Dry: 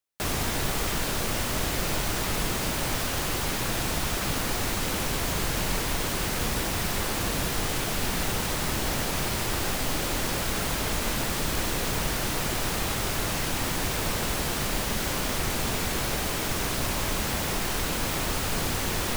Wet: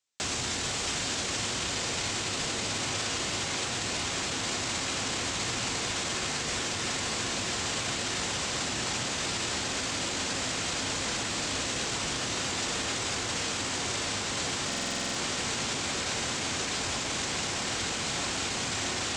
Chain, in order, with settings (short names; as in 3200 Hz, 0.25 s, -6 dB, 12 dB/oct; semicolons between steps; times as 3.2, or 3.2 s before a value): HPF 70 Hz; tape echo 0.651 s, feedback 86%, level -3.5 dB, low-pass 4200 Hz; on a send at -7.5 dB: reverb RT60 0.55 s, pre-delay 3 ms; on the sum: limiter -25 dBFS, peak gain reduction 11.5 dB; elliptic low-pass 7700 Hz, stop band 80 dB; high shelf 2900 Hz +11 dB; stuck buffer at 14.68, samples 2048, times 9